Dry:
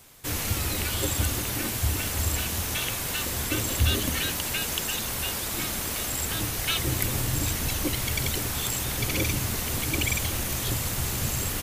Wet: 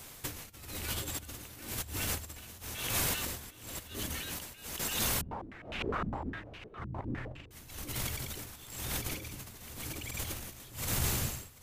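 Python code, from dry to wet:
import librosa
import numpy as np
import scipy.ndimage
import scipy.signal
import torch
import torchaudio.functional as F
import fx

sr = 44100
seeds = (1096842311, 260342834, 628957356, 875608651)

y = fx.fade_out_tail(x, sr, length_s=1.01)
y = fx.over_compress(y, sr, threshold_db=-32.0, ratio=-0.5)
y = y * (1.0 - 0.87 / 2.0 + 0.87 / 2.0 * np.cos(2.0 * np.pi * 0.99 * (np.arange(len(y)) / sr)))
y = y + 10.0 ** (-20.0 / 20.0) * np.pad(y, (int(738 * sr / 1000.0), 0))[:len(y)]
y = fx.filter_held_lowpass(y, sr, hz=9.8, low_hz=200.0, high_hz=2700.0, at=(5.21, 7.51))
y = y * librosa.db_to_amplitude(-1.0)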